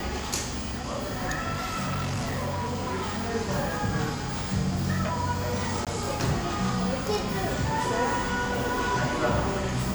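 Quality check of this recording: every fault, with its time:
1.52–3.33 clipped -26.5 dBFS
5.85–5.87 gap 17 ms

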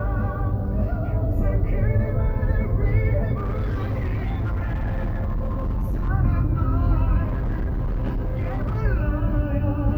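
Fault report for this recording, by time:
3.37–6.1 clipped -21 dBFS
7.23–8.78 clipped -21 dBFS

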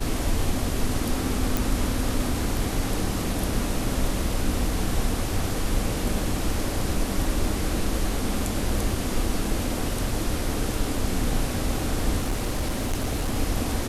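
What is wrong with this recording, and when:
1.57 pop
12.19–13.37 clipped -21 dBFS

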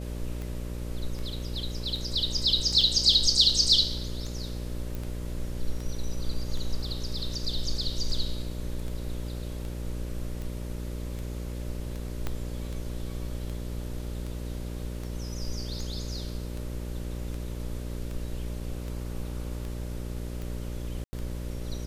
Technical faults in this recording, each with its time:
buzz 60 Hz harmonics 10 -35 dBFS
tick 78 rpm
2.81 gap 2.6 ms
4.95 pop
12.27 pop -17 dBFS
21.04–21.13 gap 90 ms

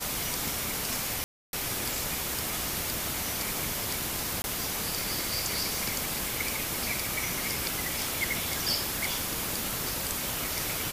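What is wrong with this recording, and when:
1.24–1.53 gap 0.291 s
4.42–4.44 gap 21 ms

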